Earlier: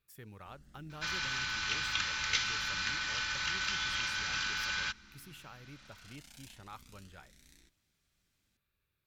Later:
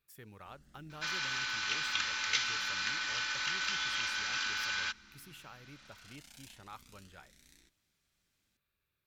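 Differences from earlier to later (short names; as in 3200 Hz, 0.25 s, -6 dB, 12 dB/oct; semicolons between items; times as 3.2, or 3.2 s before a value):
second sound: add brick-wall FIR high-pass 200 Hz; master: add low shelf 180 Hz -5 dB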